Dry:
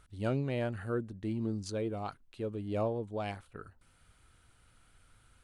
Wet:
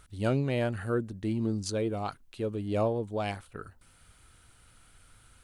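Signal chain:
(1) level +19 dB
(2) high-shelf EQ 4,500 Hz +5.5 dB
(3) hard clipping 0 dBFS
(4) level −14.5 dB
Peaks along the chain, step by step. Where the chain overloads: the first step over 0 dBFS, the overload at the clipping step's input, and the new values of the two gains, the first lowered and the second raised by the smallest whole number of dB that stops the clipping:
−2.5, −2.5, −2.5, −17.0 dBFS
no step passes full scale

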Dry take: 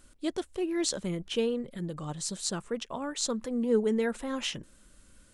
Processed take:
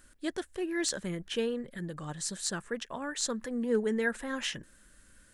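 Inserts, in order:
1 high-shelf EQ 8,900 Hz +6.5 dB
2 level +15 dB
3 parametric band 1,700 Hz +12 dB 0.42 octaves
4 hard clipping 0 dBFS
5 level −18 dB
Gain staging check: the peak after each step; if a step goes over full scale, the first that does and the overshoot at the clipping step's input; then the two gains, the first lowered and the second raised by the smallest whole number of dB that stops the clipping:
−8.0, +7.0, +7.0, 0.0, −18.0 dBFS
step 2, 7.0 dB
step 2 +8 dB, step 5 −11 dB

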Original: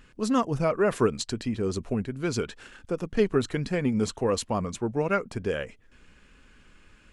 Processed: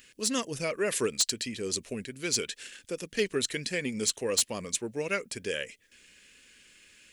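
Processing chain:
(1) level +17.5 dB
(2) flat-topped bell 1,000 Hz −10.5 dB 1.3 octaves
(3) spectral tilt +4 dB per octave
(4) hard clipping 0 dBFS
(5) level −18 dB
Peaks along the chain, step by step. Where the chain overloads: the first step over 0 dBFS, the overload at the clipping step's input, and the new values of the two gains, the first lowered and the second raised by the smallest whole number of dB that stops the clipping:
+6.5, +6.0, +9.0, 0.0, −18.0 dBFS
step 1, 9.0 dB
step 1 +8.5 dB, step 5 −9 dB

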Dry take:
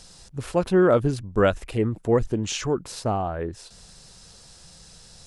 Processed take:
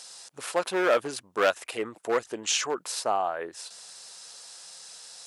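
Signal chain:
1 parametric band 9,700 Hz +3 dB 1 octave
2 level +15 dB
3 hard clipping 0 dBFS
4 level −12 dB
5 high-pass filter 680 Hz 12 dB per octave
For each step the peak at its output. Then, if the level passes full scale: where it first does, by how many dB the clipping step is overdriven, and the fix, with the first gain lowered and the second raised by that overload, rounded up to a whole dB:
−8.0, +7.0, 0.0, −12.0, −8.5 dBFS
step 2, 7.0 dB
step 2 +8 dB, step 4 −5 dB

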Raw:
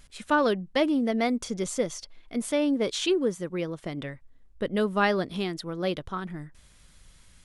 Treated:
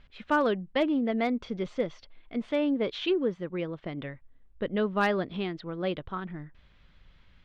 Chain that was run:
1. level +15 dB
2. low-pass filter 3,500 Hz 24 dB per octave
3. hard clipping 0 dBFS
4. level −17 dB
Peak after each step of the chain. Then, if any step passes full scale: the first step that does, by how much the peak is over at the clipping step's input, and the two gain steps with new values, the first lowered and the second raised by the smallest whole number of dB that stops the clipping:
+4.5, +5.0, 0.0, −17.0 dBFS
step 1, 5.0 dB
step 1 +10 dB, step 4 −12 dB

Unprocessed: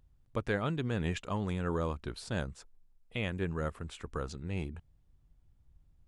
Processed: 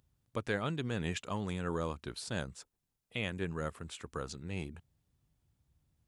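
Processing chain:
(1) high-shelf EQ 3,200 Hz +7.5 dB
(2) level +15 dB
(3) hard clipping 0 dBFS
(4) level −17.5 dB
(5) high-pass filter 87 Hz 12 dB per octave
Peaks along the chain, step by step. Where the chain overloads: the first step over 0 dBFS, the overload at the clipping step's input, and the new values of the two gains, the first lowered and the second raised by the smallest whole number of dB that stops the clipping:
−17.5, −2.5, −2.5, −20.0, −19.5 dBFS
no step passes full scale

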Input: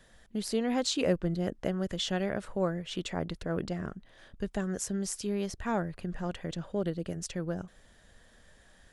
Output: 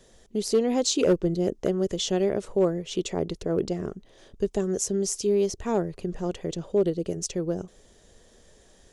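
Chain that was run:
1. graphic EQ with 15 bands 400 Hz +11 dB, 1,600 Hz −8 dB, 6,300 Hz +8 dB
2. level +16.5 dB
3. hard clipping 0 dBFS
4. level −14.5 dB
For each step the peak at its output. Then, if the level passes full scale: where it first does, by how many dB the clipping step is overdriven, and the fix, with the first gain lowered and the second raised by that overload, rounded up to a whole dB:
−12.0, +4.5, 0.0, −14.5 dBFS
step 2, 4.5 dB
step 2 +11.5 dB, step 4 −9.5 dB

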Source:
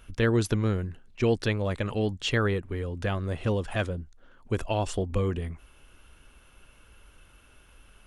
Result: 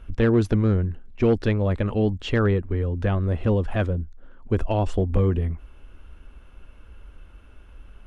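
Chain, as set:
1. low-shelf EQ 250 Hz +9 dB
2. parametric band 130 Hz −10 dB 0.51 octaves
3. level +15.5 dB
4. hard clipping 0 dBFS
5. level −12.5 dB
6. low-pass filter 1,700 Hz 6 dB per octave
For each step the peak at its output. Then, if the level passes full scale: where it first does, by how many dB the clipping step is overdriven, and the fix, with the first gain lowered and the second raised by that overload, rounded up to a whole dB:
−6.0, −9.0, +6.5, 0.0, −12.5, −12.5 dBFS
step 3, 6.5 dB
step 3 +8.5 dB, step 5 −5.5 dB

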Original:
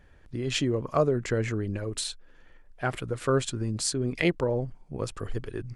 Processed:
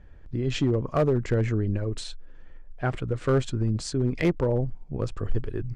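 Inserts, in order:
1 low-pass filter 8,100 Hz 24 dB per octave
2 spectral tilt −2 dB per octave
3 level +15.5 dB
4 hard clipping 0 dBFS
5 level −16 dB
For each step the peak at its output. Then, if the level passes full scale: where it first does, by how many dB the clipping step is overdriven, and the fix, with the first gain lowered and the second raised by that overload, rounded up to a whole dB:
−10.5, −9.0, +6.5, 0.0, −16.0 dBFS
step 3, 6.5 dB
step 3 +8.5 dB, step 5 −9 dB

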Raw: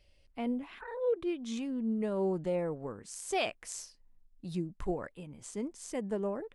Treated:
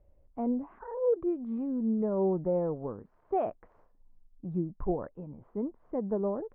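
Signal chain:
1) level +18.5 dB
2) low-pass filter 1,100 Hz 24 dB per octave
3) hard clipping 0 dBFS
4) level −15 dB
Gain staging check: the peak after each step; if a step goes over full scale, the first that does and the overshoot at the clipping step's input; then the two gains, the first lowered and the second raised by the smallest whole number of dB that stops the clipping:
−2.0, −4.0, −4.0, −19.0 dBFS
no step passes full scale

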